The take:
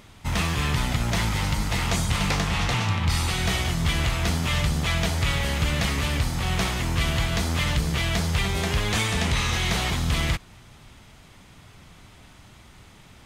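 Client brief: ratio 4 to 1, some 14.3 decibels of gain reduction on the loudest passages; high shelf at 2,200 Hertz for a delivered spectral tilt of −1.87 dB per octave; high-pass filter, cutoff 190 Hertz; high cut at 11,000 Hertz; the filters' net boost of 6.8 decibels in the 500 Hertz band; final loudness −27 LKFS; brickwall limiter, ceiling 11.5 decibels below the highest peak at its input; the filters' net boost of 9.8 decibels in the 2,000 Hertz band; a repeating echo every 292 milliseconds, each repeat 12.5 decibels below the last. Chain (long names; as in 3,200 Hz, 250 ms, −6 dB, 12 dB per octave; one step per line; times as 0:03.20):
high-pass filter 190 Hz
low-pass filter 11,000 Hz
parametric band 500 Hz +8 dB
parametric band 2,000 Hz +6.5 dB
high-shelf EQ 2,200 Hz +8.5 dB
downward compressor 4 to 1, threshold −33 dBFS
brickwall limiter −26 dBFS
repeating echo 292 ms, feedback 24%, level −12.5 dB
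level +8 dB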